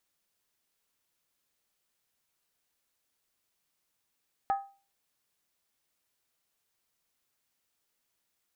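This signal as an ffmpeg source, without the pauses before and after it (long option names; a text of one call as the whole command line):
ffmpeg -f lavfi -i "aevalsrc='0.0794*pow(10,-3*t/0.36)*sin(2*PI*791*t)+0.0251*pow(10,-3*t/0.285)*sin(2*PI*1260.9*t)+0.00794*pow(10,-3*t/0.246)*sin(2*PI*1689.6*t)+0.00251*pow(10,-3*t/0.238)*sin(2*PI*1816.1*t)+0.000794*pow(10,-3*t/0.221)*sin(2*PI*2098.5*t)':duration=0.63:sample_rate=44100" out.wav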